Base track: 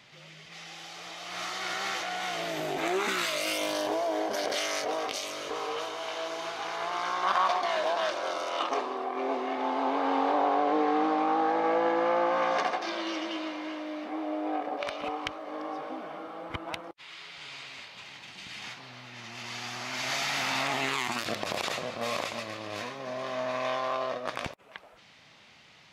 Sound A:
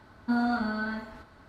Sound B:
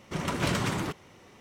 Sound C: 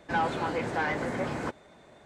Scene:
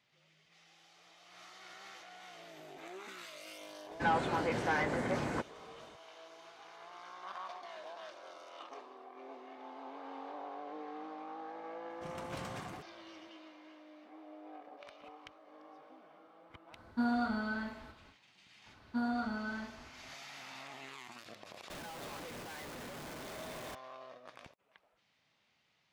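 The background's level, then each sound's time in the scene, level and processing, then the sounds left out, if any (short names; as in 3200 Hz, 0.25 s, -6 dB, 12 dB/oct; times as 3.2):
base track -19.5 dB
3.91 add C -3 dB
11.9 add B -17 dB
16.69 add A -5.5 dB, fades 0.10 s
18.66 add A -8 dB
21.7 add C -15 dB + infinite clipping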